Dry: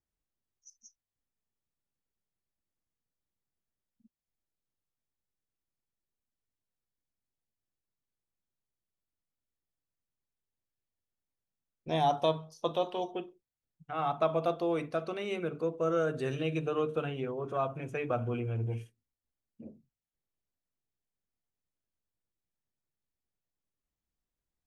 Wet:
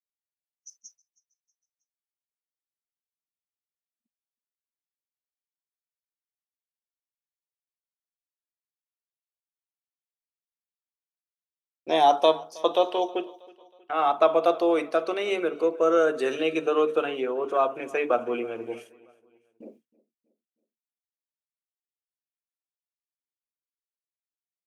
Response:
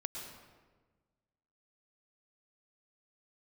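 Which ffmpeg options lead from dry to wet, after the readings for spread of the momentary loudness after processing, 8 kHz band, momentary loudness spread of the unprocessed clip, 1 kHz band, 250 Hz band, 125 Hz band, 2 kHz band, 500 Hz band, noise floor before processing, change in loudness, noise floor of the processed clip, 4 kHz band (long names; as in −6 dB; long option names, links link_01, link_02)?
11 LU, can't be measured, 11 LU, +9.0 dB, +6.0 dB, below −15 dB, +9.0 dB, +9.0 dB, below −85 dBFS, +8.5 dB, below −85 dBFS, +9.0 dB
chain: -filter_complex "[0:a]highpass=frequency=300:width=0.5412,highpass=frequency=300:width=1.3066,agate=range=-33dB:threshold=-58dB:ratio=3:detection=peak,asplit=2[link_01][link_02];[link_02]aecho=0:1:319|638|957:0.0708|0.0326|0.015[link_03];[link_01][link_03]amix=inputs=2:normalize=0,volume=9dB"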